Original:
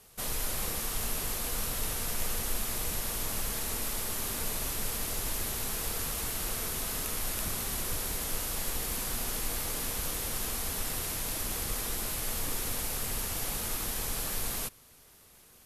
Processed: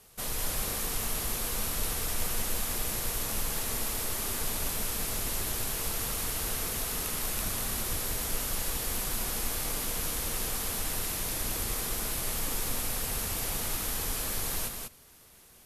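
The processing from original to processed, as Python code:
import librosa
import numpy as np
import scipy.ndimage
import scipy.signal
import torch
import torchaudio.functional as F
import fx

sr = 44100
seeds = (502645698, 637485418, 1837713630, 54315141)

y = x + 10.0 ** (-4.5 / 20.0) * np.pad(x, (int(193 * sr / 1000.0), 0))[:len(x)]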